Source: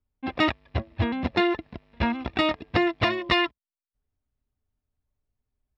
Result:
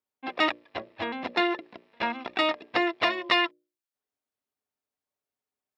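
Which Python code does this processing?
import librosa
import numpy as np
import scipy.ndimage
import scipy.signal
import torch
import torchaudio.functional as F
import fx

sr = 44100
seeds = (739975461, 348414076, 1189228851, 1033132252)

y = scipy.signal.sosfilt(scipy.signal.butter(2, 400.0, 'highpass', fs=sr, output='sos'), x)
y = fx.hum_notches(y, sr, base_hz=60, count=10)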